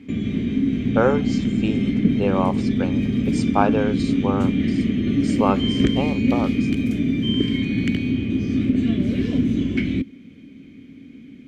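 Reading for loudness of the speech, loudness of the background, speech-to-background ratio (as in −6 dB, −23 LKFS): −26.0 LKFS, −21.5 LKFS, −4.5 dB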